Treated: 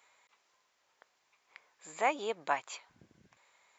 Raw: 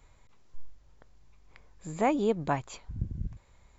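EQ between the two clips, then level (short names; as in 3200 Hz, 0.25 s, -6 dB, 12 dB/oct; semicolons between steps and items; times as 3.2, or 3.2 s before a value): HPF 700 Hz 12 dB/oct; bell 2300 Hz +3.5 dB 1.2 oct; 0.0 dB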